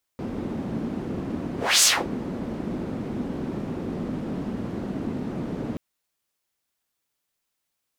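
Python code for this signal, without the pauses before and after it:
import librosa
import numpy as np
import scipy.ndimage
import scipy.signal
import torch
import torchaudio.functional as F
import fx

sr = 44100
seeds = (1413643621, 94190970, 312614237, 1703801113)

y = fx.whoosh(sr, seeds[0], length_s=5.58, peak_s=1.64, rise_s=0.28, fall_s=0.26, ends_hz=240.0, peak_hz=7000.0, q=1.8, swell_db=14.0)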